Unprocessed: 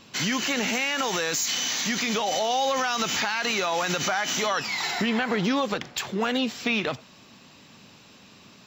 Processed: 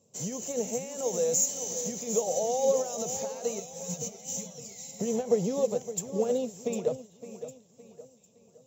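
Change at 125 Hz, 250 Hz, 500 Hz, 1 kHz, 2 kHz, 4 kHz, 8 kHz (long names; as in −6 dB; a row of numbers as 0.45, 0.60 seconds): −4.0, −7.0, +1.5, −12.0, −27.0, −19.0, −0.5 decibels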